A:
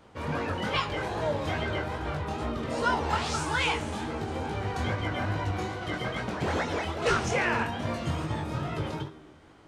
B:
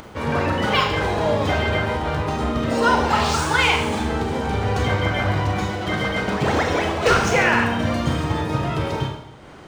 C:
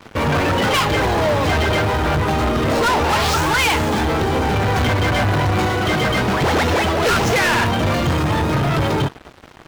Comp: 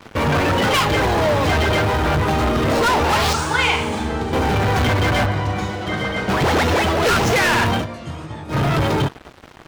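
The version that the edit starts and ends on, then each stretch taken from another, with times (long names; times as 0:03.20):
C
0:03.33–0:04.33: punch in from B
0:05.26–0:06.29: punch in from B
0:07.82–0:08.53: punch in from A, crossfade 0.10 s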